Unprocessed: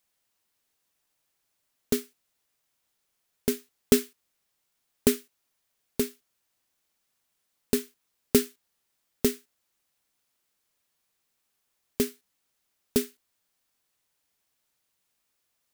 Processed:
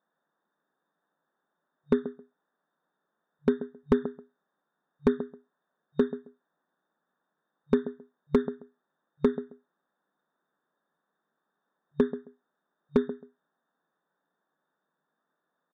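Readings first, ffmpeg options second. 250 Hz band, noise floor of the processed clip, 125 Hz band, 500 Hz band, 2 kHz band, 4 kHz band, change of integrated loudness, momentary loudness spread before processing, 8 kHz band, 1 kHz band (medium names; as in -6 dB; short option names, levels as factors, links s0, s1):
+1.0 dB, -83 dBFS, -0.5 dB, +1.0 dB, -3.0 dB, -16.0 dB, -1.5 dB, 14 LU, under -30 dB, +5.5 dB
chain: -filter_complex "[0:a]afftfilt=real='re*between(b*sr/4096,140,3700)':imag='im*between(b*sr/4096,140,3700)':win_size=4096:overlap=0.75,acompressor=threshold=0.0794:ratio=8,asuperstop=centerf=2600:order=12:qfactor=1.3,asplit=2[s0][s1];[s1]adelay=134,lowpass=f=2000:p=1,volume=0.211,asplit=2[s2][s3];[s3]adelay=134,lowpass=f=2000:p=1,volume=0.17[s4];[s0][s2][s4]amix=inputs=3:normalize=0,volume=8.41,asoftclip=hard,volume=0.119,volume=2"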